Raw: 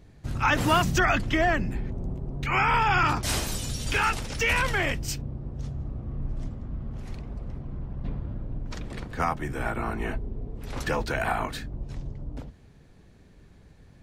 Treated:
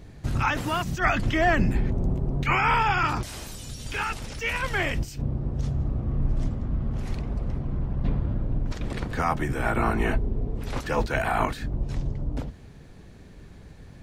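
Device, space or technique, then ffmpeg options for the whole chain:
de-esser from a sidechain: -filter_complex "[0:a]asplit=2[link_01][link_02];[link_02]highpass=frequency=4900:width=0.5412,highpass=frequency=4900:width=1.3066,apad=whole_len=618309[link_03];[link_01][link_03]sidechaincompress=threshold=-55dB:ratio=3:attack=3.3:release=50,volume=7dB"

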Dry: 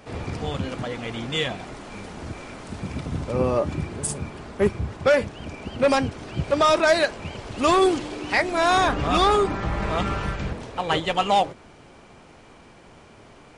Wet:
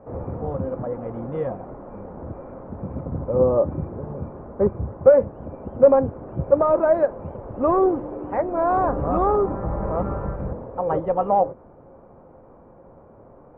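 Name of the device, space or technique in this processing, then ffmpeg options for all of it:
under water: -af "lowpass=frequency=1100:width=0.5412,lowpass=frequency=1100:width=1.3066,equalizer=frequency=530:width_type=o:width=0.21:gain=10"

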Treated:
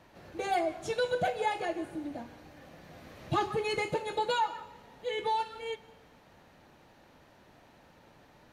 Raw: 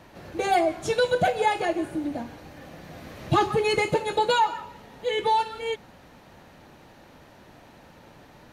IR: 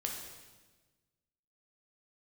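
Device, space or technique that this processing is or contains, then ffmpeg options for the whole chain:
filtered reverb send: -filter_complex "[0:a]asplit=2[link_01][link_02];[link_02]highpass=300,lowpass=8200[link_03];[1:a]atrim=start_sample=2205[link_04];[link_03][link_04]afir=irnorm=-1:irlink=0,volume=-14dB[link_05];[link_01][link_05]amix=inputs=2:normalize=0,volume=-9dB"

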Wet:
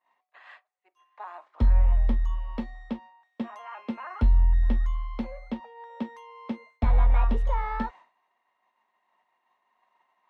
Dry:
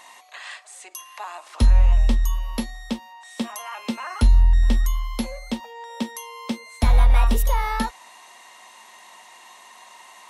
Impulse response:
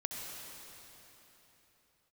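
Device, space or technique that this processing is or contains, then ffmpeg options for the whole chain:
hearing-loss simulation: -filter_complex "[0:a]asettb=1/sr,asplit=3[link_01][link_02][link_03];[link_01]atrim=end=1.124[link_04];[link_02]atrim=start=1.12:end=2.12,asetpts=PTS-STARTPTS,afade=type=in:duration=0.004:curve=qsin,afade=type=out:start_time=0.996:duration=0.004:curve=qsin,bandreject=frequency=2700:width=10[link_05];[link_03]atrim=start=2.116[link_06];[link_04][link_05]acrossfade=duration=0.004:curve1=hsin:curve2=qsin[link_07];[link_07][link_06]acrossfade=duration=0.004:curve1=qsin:curve2=hsin,lowpass=1800,agate=range=-33dB:threshold=-37dB:ratio=3:detection=peak,volume=-5dB"

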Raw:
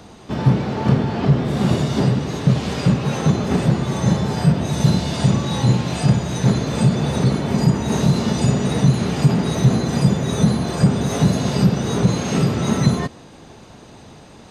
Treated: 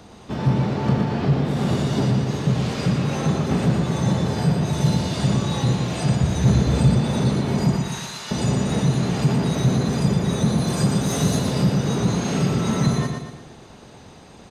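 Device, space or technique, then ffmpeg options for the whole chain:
parallel distortion: -filter_complex "[0:a]asettb=1/sr,asplit=3[link_01][link_02][link_03];[link_01]atrim=end=7.764[link_04];[link_02]atrim=start=7.76:end=8.31,asetpts=PTS-STARTPTS,afade=type=in:duration=0.004:curve=qsin,afade=type=out:start_time=0.546:duration=0.004:curve=qsin,highpass=1300[link_05];[link_03]atrim=start=8.306[link_06];[link_04][link_05]acrossfade=duration=0.004:curve1=hsin:curve2=qsin[link_07];[link_07][link_06]acrossfade=duration=0.004:curve1=qsin:curve2=hsin,asettb=1/sr,asplit=3[link_08][link_09][link_10];[link_08]atrim=end=10.584[link_11];[link_09]atrim=start=10.58:end=11.39,asetpts=PTS-STARTPTS,afade=type=in:duration=0.004:curve=qsin,afade=type=out:start_time=0.806:duration=0.004:curve=qsin,aemphasis=mode=production:type=cd[link_12];[link_10]atrim=start=11.386[link_13];[link_11][link_12]acrossfade=duration=0.004:curve1=hsin:curve2=qsin[link_14];[link_14][link_13]acrossfade=duration=0.004:curve1=qsin:curve2=hsin,asplit=2[link_15][link_16];[link_16]asoftclip=type=hard:threshold=-18.5dB,volume=-8dB[link_17];[link_15][link_17]amix=inputs=2:normalize=0,aecho=1:1:117|234|351|468|585|702:0.562|0.264|0.124|0.0584|0.0274|0.0129,asettb=1/sr,asplit=3[link_18][link_19][link_20];[link_18]atrim=end=6.214[link_21];[link_19]atrim=start=6.21:end=7.01,asetpts=PTS-STARTPTS,afade=type=in:duration=0.004:curve=qsin,afade=type=out:start_time=0.796:duration=0.004:curve=qsin,equalizer=frequency=65:width_type=o:width=1.4:gain=13[link_22];[link_20]atrim=start=7.006[link_23];[link_21][link_22]acrossfade=duration=0.004:curve1=hsin:curve2=qsin[link_24];[link_24][link_23]acrossfade=duration=0.004:curve1=qsin:curve2=hsin,volume=-6dB"

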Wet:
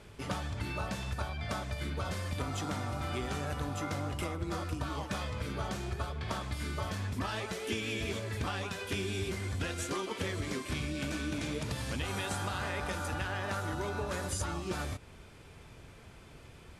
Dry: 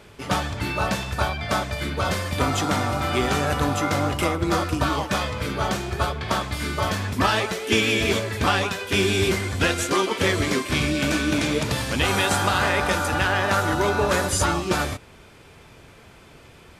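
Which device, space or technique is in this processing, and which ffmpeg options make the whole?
ASMR close-microphone chain: -af "lowshelf=frequency=150:gain=7.5,acompressor=threshold=-26dB:ratio=4,lowpass=frequency=12000:width=0.5412,lowpass=frequency=12000:width=1.3066,highshelf=frequency=11000:gain=5.5,volume=-7.5dB"

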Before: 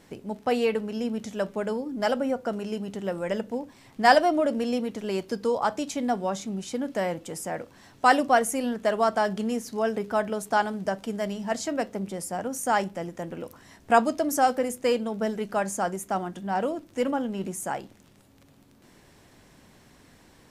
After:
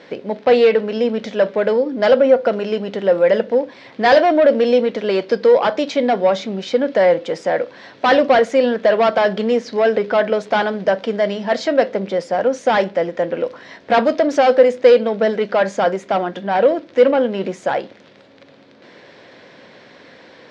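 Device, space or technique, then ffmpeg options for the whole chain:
overdrive pedal into a guitar cabinet: -filter_complex "[0:a]asplit=2[link_01][link_02];[link_02]highpass=frequency=720:poles=1,volume=23dB,asoftclip=type=tanh:threshold=-4.5dB[link_03];[link_01][link_03]amix=inputs=2:normalize=0,lowpass=frequency=5300:poles=1,volume=-6dB,highpass=100,equalizer=frequency=520:width_type=q:width=4:gain=8,equalizer=frequency=840:width_type=q:width=4:gain=-5,equalizer=frequency=1200:width_type=q:width=4:gain=-5,equalizer=frequency=2800:width_type=q:width=4:gain=-4,lowpass=frequency=4400:width=0.5412,lowpass=frequency=4400:width=1.3066"

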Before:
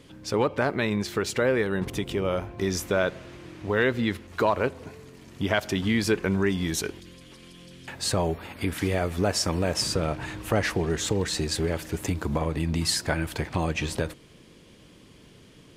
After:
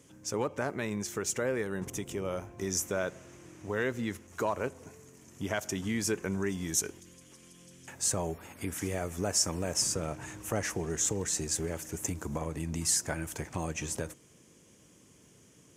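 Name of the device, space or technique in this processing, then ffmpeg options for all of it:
budget condenser microphone: -af "highpass=68,highshelf=frequency=5200:width_type=q:width=3:gain=7,volume=-8dB"

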